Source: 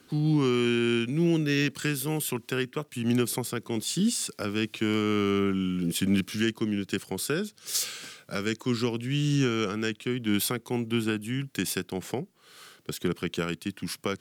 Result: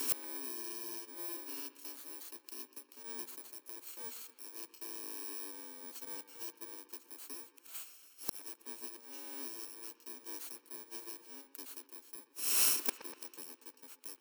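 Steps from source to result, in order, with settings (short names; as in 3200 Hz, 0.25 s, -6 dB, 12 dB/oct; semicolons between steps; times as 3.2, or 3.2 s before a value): FFT order left unsorted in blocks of 64 samples; Chebyshev high-pass 260 Hz, order 6; high shelf 4700 Hz +7 dB; flipped gate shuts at -30 dBFS, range -39 dB; dark delay 0.122 s, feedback 65%, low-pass 2900 Hz, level -14 dB; wavefolder -37.5 dBFS; gain +17 dB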